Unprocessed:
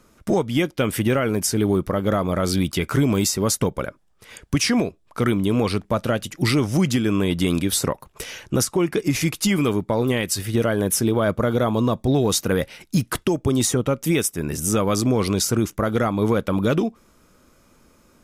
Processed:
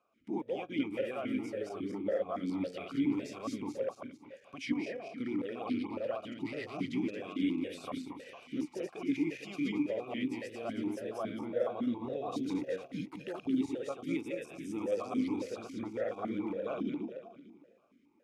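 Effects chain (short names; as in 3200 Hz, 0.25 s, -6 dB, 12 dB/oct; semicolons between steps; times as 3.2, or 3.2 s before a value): regenerating reverse delay 0.113 s, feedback 64%, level -1 dB; vowel sequencer 7.2 Hz; gain -7 dB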